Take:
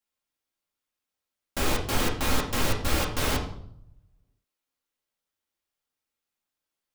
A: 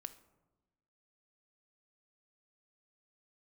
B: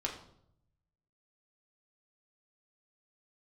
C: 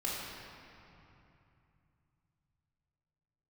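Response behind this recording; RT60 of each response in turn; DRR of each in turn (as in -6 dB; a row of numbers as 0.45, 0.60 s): B; 1.1, 0.70, 2.8 s; 8.0, -1.5, -5.5 dB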